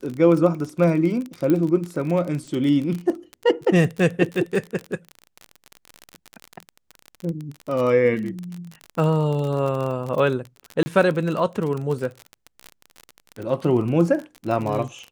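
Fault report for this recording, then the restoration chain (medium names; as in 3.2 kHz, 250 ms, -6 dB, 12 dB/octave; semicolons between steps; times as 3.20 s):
crackle 33 per s -26 dBFS
1.50 s: pop -11 dBFS
10.83–10.86 s: dropout 30 ms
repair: de-click; interpolate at 10.83 s, 30 ms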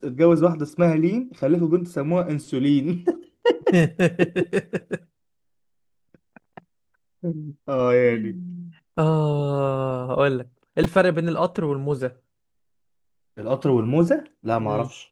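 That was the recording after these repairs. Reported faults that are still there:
nothing left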